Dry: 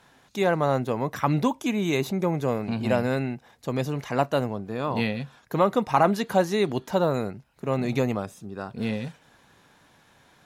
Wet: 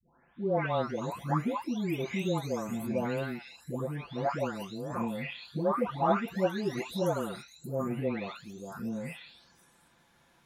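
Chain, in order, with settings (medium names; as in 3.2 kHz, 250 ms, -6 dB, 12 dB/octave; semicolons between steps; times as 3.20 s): delay that grows with frequency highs late, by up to 768 ms; trim -5 dB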